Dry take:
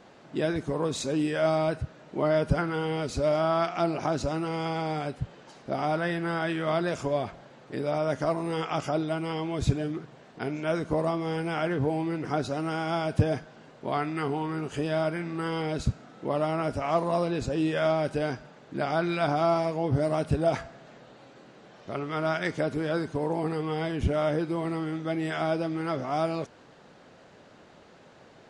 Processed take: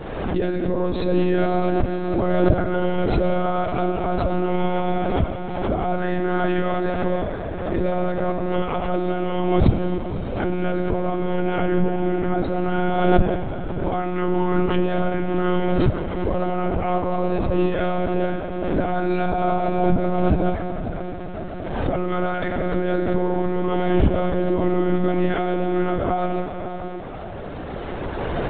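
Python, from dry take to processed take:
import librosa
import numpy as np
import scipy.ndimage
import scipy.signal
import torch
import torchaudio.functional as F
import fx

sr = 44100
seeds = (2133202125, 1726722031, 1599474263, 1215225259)

y = fx.recorder_agc(x, sr, target_db=-16.0, rise_db_per_s=12.0, max_gain_db=30)
y = fx.tilt_eq(y, sr, slope=-2.0)
y = fx.echo_diffused(y, sr, ms=556, feedback_pct=64, wet_db=-10.5)
y = fx.rev_schroeder(y, sr, rt60_s=2.9, comb_ms=29, drr_db=6.0)
y = fx.lpc_monotone(y, sr, seeds[0], pitch_hz=180.0, order=16)
y = fx.pre_swell(y, sr, db_per_s=38.0)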